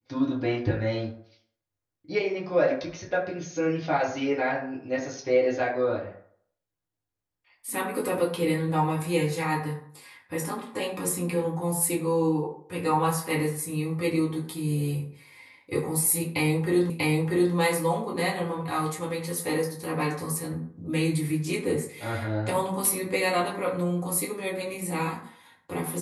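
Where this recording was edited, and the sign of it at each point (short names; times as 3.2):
16.9 repeat of the last 0.64 s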